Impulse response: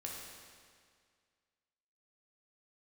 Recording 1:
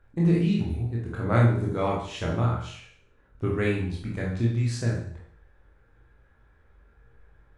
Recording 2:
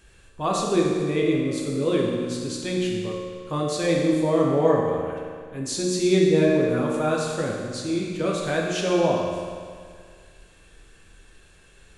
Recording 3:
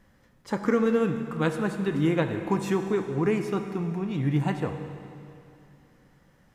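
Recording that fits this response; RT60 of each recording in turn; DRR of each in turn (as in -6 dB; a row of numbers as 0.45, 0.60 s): 2; 0.60, 2.0, 2.7 s; -4.0, -2.5, 6.5 dB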